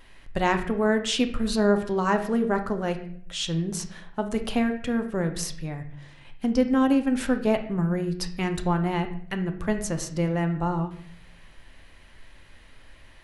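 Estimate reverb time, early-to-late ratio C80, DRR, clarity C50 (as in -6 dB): 0.60 s, 14.0 dB, 6.0 dB, 10.5 dB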